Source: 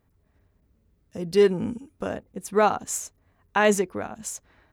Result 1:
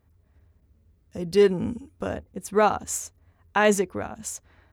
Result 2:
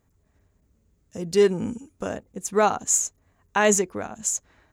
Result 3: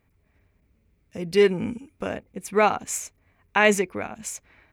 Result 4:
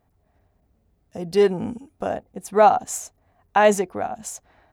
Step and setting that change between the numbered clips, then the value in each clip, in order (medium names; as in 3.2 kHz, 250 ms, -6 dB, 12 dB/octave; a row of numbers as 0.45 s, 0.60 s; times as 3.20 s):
peaking EQ, frequency: 78 Hz, 6.9 kHz, 2.3 kHz, 730 Hz